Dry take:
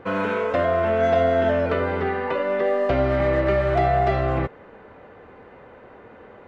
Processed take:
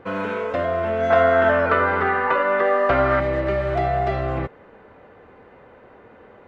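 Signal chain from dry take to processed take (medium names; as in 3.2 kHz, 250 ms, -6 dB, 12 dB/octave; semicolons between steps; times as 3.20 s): 1.10–3.20 s: peaking EQ 1.3 kHz +14 dB 1.4 oct; trim -2 dB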